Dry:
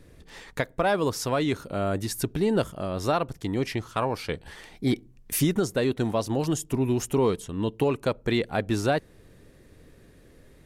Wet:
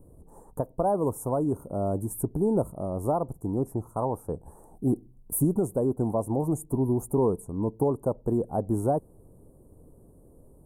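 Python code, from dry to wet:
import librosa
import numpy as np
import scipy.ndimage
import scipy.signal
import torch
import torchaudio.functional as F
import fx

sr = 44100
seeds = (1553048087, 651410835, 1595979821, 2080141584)

y = scipy.signal.sosfilt(scipy.signal.ellip(3, 1.0, 50, [920.0, 9100.0], 'bandstop', fs=sr, output='sos'), x)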